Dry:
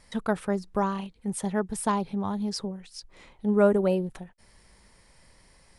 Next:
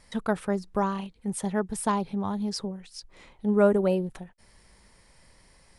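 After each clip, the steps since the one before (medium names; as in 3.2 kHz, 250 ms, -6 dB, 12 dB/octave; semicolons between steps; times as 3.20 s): no audible change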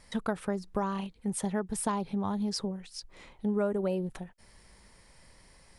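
compression 4:1, threshold -27 dBFS, peak gain reduction 10.5 dB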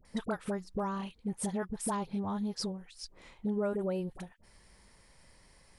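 phase dispersion highs, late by 51 ms, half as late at 910 Hz; trim -3 dB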